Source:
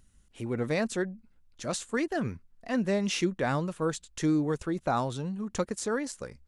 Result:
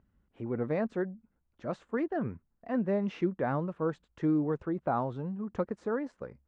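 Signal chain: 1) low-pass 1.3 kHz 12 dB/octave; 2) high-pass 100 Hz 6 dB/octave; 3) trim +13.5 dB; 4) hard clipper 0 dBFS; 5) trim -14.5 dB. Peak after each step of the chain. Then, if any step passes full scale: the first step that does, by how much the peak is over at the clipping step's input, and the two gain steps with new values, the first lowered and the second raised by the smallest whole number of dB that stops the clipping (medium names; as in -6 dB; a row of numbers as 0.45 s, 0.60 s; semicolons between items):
-15.5 dBFS, -17.0 dBFS, -3.5 dBFS, -3.5 dBFS, -18.0 dBFS; nothing clips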